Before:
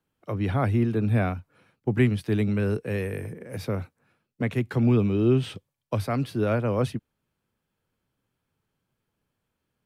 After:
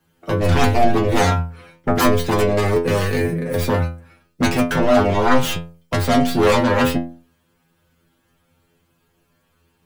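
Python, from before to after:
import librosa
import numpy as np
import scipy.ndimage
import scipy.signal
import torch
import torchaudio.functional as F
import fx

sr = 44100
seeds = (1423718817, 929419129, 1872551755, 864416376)

y = fx.tracing_dist(x, sr, depth_ms=0.34)
y = fx.fold_sine(y, sr, drive_db=14, ceiling_db=-9.0)
y = fx.stiff_resonator(y, sr, f0_hz=83.0, decay_s=0.45, stiffness=0.002)
y = F.gain(torch.from_numpy(y), 8.5).numpy()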